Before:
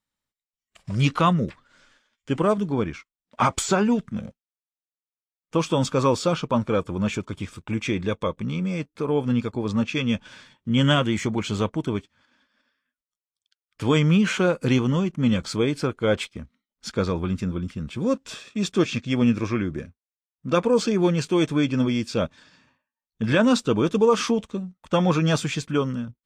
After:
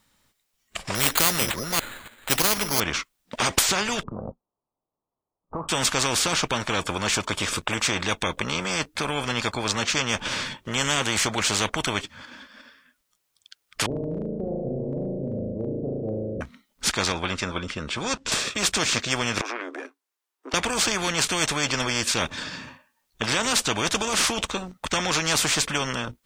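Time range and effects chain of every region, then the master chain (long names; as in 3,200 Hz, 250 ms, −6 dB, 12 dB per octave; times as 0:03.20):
0:00.95–0:02.80: delay that plays each chunk backwards 282 ms, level −12.5 dB + bad sample-rate conversion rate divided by 8×, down none, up hold
0:04.03–0:05.69: Butterworth low-pass 1,100 Hz 48 dB per octave + downward compressor 2 to 1, threshold −42 dBFS
0:13.86–0:16.41: Chebyshev low-pass with heavy ripple 600 Hz, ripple 3 dB + flutter between parallel walls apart 6.3 metres, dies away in 1.1 s
0:17.12–0:18.32: low-pass filter 7,500 Hz + expander for the loud parts, over −31 dBFS
0:19.41–0:20.54: downward compressor, threshold −32 dBFS + tube saturation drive 27 dB, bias 0.75 + Chebyshev high-pass with heavy ripple 270 Hz, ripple 6 dB
whole clip: boost into a limiter +10.5 dB; every bin compressed towards the loudest bin 4 to 1; level −1 dB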